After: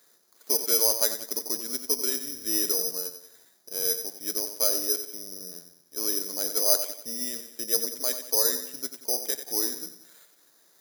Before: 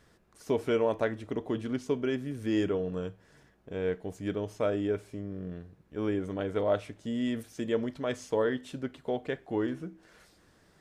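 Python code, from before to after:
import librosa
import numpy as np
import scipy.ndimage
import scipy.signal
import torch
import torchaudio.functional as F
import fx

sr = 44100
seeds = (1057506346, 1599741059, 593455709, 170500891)

y = scipy.signal.sosfilt(scipy.signal.butter(2, 370.0, 'highpass', fs=sr, output='sos'), x)
y = fx.echo_feedback(y, sr, ms=91, feedback_pct=44, wet_db=-10)
y = (np.kron(scipy.signal.resample_poly(y, 1, 8), np.eye(8)[0]) * 8)[:len(y)]
y = F.gain(torch.from_numpy(y), -3.5).numpy()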